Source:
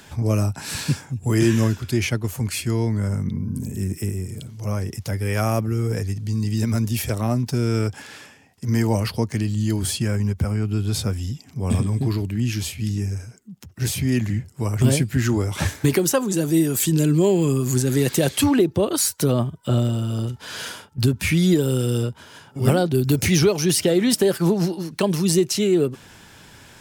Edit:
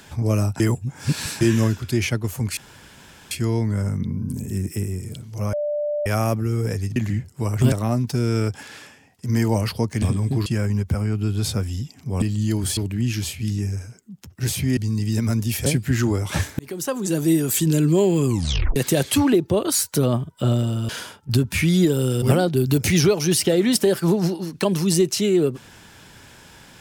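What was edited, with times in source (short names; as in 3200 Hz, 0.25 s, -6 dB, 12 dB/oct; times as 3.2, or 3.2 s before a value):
0.6–1.41 reverse
2.57 insert room tone 0.74 s
4.79–5.32 bleep 591 Hz -21 dBFS
6.22–7.11 swap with 14.16–14.92
9.41–9.96 swap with 11.72–12.16
15.85–16.42 fade in
17.52 tape stop 0.50 s
20.15–20.58 cut
21.91–22.6 cut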